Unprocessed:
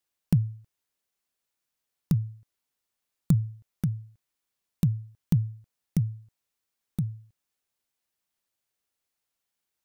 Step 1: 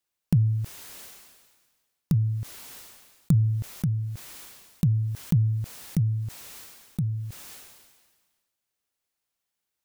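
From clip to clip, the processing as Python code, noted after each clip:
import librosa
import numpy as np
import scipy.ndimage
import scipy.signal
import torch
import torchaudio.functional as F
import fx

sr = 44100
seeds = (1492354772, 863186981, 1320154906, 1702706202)

y = fx.sustainer(x, sr, db_per_s=39.0)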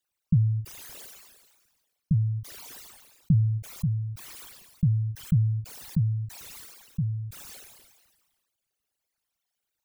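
y = fx.envelope_sharpen(x, sr, power=3.0)
y = fx.end_taper(y, sr, db_per_s=270.0)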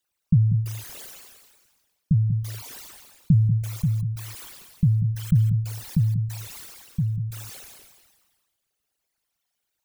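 y = x + 10.0 ** (-10.0 / 20.0) * np.pad(x, (int(189 * sr / 1000.0), 0))[:len(x)]
y = y * librosa.db_to_amplitude(3.5)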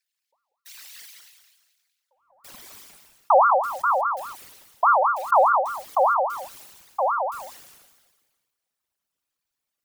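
y = fx.filter_sweep_highpass(x, sr, from_hz=3100.0, to_hz=95.0, start_s=2.05, end_s=2.84, q=2.4)
y = fx.ring_lfo(y, sr, carrier_hz=970.0, swing_pct=35, hz=4.9)
y = y * librosa.db_to_amplitude(-1.5)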